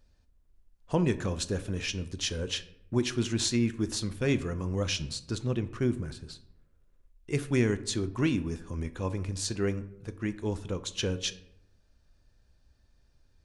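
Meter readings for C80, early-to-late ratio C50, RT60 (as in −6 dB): 18.5 dB, 16.0 dB, 0.80 s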